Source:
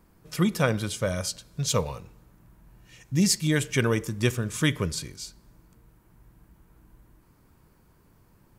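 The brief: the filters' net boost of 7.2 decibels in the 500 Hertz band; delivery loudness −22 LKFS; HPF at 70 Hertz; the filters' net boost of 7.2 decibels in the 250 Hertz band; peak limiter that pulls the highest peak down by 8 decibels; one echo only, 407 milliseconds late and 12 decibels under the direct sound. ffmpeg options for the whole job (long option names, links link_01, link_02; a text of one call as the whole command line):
ffmpeg -i in.wav -af "highpass=70,equalizer=frequency=250:width_type=o:gain=8.5,equalizer=frequency=500:width_type=o:gain=6,alimiter=limit=-12dB:level=0:latency=1,aecho=1:1:407:0.251,volume=3dB" out.wav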